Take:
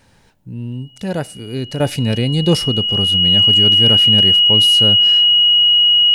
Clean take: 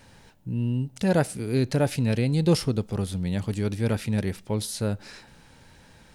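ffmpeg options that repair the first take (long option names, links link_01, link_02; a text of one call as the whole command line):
ffmpeg -i in.wav -af "bandreject=frequency=2900:width=30,asetnsamples=nb_out_samples=441:pad=0,asendcmd='1.8 volume volume -6.5dB',volume=0dB" out.wav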